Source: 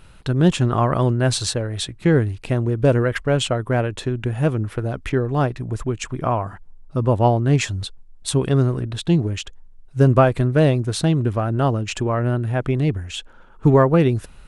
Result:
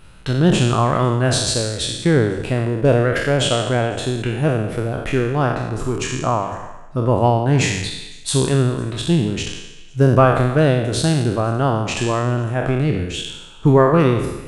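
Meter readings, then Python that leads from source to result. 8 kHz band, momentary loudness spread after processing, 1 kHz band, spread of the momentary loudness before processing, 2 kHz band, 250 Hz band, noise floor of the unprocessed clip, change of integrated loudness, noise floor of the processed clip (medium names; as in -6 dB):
+5.5 dB, 9 LU, +3.5 dB, 10 LU, +4.5 dB, +1.5 dB, -45 dBFS, +1.5 dB, -38 dBFS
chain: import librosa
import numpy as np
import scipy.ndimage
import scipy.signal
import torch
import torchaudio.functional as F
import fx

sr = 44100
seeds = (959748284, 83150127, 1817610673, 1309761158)

y = fx.spec_trails(x, sr, decay_s=0.99)
y = fx.hum_notches(y, sr, base_hz=50, count=2)
y = fx.echo_stepped(y, sr, ms=101, hz=150.0, octaves=1.4, feedback_pct=70, wet_db=-12.0)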